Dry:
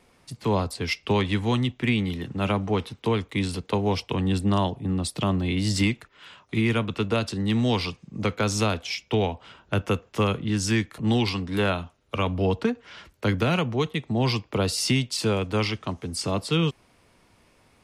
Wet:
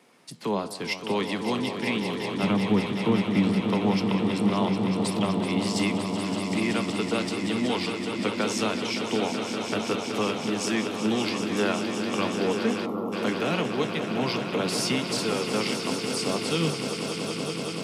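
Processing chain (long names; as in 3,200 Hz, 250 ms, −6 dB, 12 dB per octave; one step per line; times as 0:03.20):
0:02.43–0:03.70: bass and treble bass +14 dB, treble −9 dB
in parallel at 0 dB: downward compressor, threshold −36 dBFS, peak gain reduction 22.5 dB
on the sum: high-pass filter 170 Hz 24 dB per octave
on a send: echo that builds up and dies away 189 ms, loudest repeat 5, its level −9.5 dB
0:12.86–0:13.13: on the sum: gain on a spectral selection 1,400–11,000 Hz −24 dB
flanger 0.8 Hz, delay 6.3 ms, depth 9.6 ms, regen +85%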